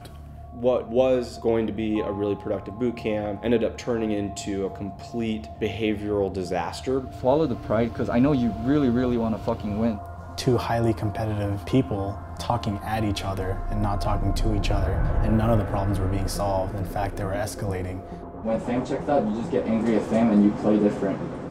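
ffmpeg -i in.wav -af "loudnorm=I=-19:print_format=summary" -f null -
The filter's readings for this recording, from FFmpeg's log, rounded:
Input Integrated:    -25.0 LUFS
Input True Peak:      -7.5 dBTP
Input LRA:             4.0 LU
Input Threshold:     -35.1 LUFS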